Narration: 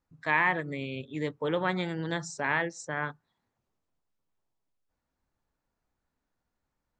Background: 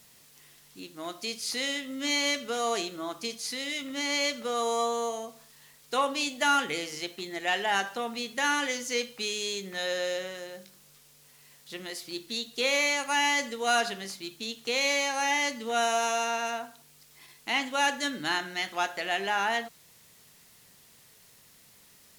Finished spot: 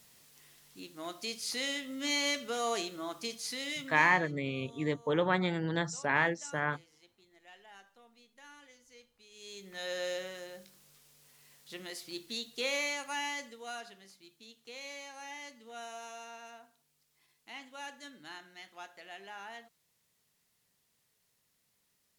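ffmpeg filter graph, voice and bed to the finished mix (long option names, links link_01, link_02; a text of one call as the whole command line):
ffmpeg -i stem1.wav -i stem2.wav -filter_complex "[0:a]adelay=3650,volume=0dB[link_01];[1:a]volume=19dB,afade=type=out:start_time=3.73:duration=0.48:silence=0.0630957,afade=type=in:start_time=9.3:duration=0.77:silence=0.0707946,afade=type=out:start_time=12.33:duration=1.46:silence=0.211349[link_02];[link_01][link_02]amix=inputs=2:normalize=0" out.wav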